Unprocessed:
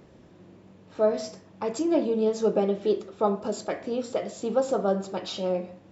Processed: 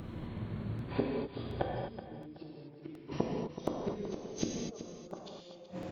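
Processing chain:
pitch glide at a constant tempo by −10 semitones ending unshifted
gate with flip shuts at −26 dBFS, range −38 dB
on a send: repeating echo 376 ms, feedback 30%, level −12.5 dB
on the sum: reverb whose tail is shaped and stops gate 280 ms flat, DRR −1.5 dB
regular buffer underruns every 0.72 s, samples 64, repeat, from 0:00.79
level +9.5 dB

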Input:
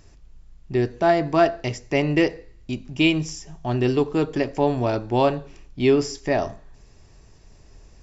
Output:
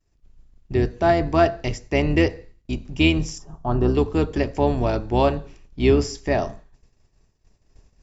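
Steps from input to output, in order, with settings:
sub-octave generator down 2 octaves, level −1 dB
downward expander −37 dBFS
0:03.38–0:03.95: high shelf with overshoot 1,600 Hz −8.5 dB, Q 3

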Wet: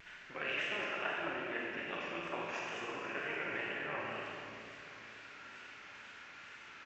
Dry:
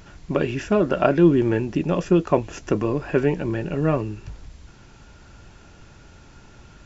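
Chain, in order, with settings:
reversed playback
downward compressor, threshold −26 dBFS, peak gain reduction 15 dB
reversed playback
amplitude modulation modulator 240 Hz, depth 60%
resonant band-pass 2,100 Hz, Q 2.2
single-tap delay 218 ms −5.5 dB
tape wow and flutter 100 cents
repeating echo 488 ms, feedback 55%, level −14 dB
four-comb reverb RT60 1.8 s, combs from 32 ms, DRR −2.5 dB
level +5.5 dB

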